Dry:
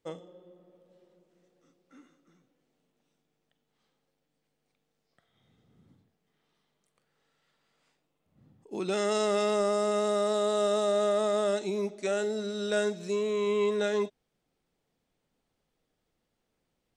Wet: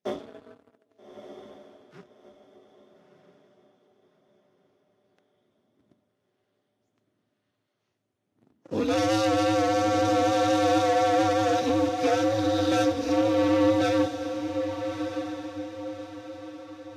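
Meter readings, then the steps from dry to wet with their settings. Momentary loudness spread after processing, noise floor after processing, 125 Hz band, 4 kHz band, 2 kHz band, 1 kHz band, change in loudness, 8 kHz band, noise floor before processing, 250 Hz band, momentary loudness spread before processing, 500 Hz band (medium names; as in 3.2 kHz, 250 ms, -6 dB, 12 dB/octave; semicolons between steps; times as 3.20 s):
15 LU, -78 dBFS, no reading, +5.0 dB, +6.0 dB, +10.0 dB, +4.0 dB, +3.0 dB, -80 dBFS, +11.0 dB, 7 LU, +3.0 dB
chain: knee-point frequency compression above 3.6 kHz 1.5:1; waveshaping leveller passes 3; bass shelf 200 Hz +6 dB; ring modulator 110 Hz; high-pass 110 Hz 24 dB/octave; echo that smears into a reverb 1257 ms, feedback 41%, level -8 dB; Vorbis 48 kbps 44.1 kHz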